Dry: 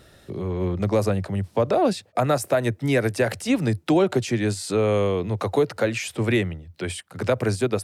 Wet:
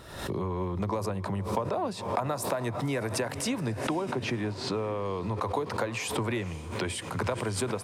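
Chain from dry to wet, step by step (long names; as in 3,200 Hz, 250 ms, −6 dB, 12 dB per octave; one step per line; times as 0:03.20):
parametric band 990 Hz +13 dB 0.41 octaves
downward compressor 6 to 1, threshold −30 dBFS, peak gain reduction 16.5 dB
0:03.72–0:05.05: high-frequency loss of the air 220 metres
on a send: feedback delay with all-pass diffusion 522 ms, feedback 52%, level −15 dB
on the sum: background raised ahead of every attack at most 69 dB per second
level +1.5 dB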